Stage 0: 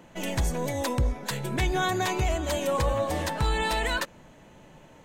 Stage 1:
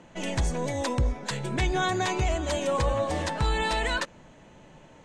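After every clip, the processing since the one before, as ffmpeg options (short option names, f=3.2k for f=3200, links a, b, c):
-af "lowpass=f=8.7k:w=0.5412,lowpass=f=8.7k:w=1.3066"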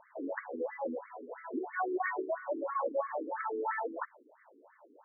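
-af "asubboost=boost=9:cutoff=55,afftfilt=real='re*between(b*sr/1024,310*pow(1600/310,0.5+0.5*sin(2*PI*3*pts/sr))/1.41,310*pow(1600/310,0.5+0.5*sin(2*PI*3*pts/sr))*1.41)':imag='im*between(b*sr/1024,310*pow(1600/310,0.5+0.5*sin(2*PI*3*pts/sr))/1.41,310*pow(1600/310,0.5+0.5*sin(2*PI*3*pts/sr))*1.41)':win_size=1024:overlap=0.75"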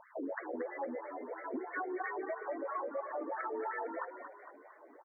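-filter_complex "[0:a]acompressor=threshold=-38dB:ratio=6,asplit=7[a][b][c][d][e][f][g];[b]adelay=229,afreqshift=41,volume=-9dB[h];[c]adelay=458,afreqshift=82,volume=-14.8dB[i];[d]adelay=687,afreqshift=123,volume=-20.7dB[j];[e]adelay=916,afreqshift=164,volume=-26.5dB[k];[f]adelay=1145,afreqshift=205,volume=-32.4dB[l];[g]adelay=1374,afreqshift=246,volume=-38.2dB[m];[a][h][i][j][k][l][m]amix=inputs=7:normalize=0,volume=2dB"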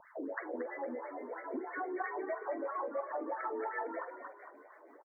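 -filter_complex "[0:a]acrossover=split=410[a][b];[a]aeval=exprs='val(0)*(1-0.5/2+0.5/2*cos(2*PI*6.2*n/s))':c=same[c];[b]aeval=exprs='val(0)*(1-0.5/2-0.5/2*cos(2*PI*6.2*n/s))':c=same[d];[c][d]amix=inputs=2:normalize=0,asplit=2[e][f];[f]adelay=45,volume=-14dB[g];[e][g]amix=inputs=2:normalize=0,volume=2.5dB"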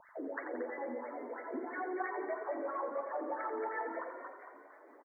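-af "aecho=1:1:87|174|261|348|435|522:0.398|0.215|0.116|0.0627|0.0339|0.0183,volume=-1dB"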